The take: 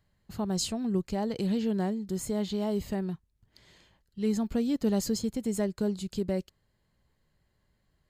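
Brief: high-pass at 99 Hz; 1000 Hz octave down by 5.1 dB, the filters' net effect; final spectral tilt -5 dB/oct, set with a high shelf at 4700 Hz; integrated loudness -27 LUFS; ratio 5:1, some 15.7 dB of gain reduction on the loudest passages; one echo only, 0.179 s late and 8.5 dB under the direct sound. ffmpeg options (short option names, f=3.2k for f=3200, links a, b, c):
-af "highpass=99,equalizer=f=1k:t=o:g=-7.5,highshelf=f=4.7k:g=4,acompressor=threshold=-42dB:ratio=5,aecho=1:1:179:0.376,volume=17dB"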